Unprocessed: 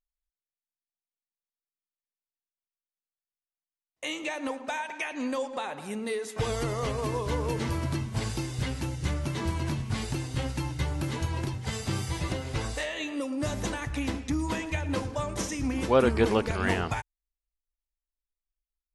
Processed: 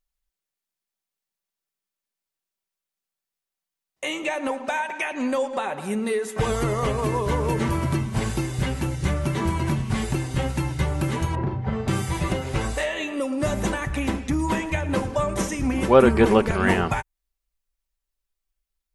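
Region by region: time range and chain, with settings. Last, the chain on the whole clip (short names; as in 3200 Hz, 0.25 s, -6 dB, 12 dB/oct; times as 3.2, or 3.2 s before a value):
11.35–11.88 LPF 1200 Hz + doubler 41 ms -5.5 dB
whole clip: dynamic EQ 4700 Hz, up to -8 dB, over -53 dBFS, Q 1.1; comb 5.2 ms, depth 34%; gain +7 dB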